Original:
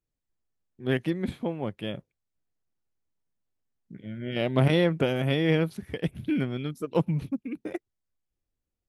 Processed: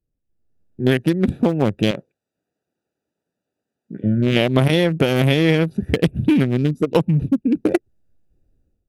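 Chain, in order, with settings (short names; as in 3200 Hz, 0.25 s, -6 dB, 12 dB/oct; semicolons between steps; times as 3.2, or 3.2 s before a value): Wiener smoothing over 41 samples; AGC gain up to 15 dB; high shelf 4800 Hz +12 dB; compressor 6:1, threshold -22 dBFS, peak gain reduction 13.5 dB; 1.91–4.04 weighting filter A; gain +8.5 dB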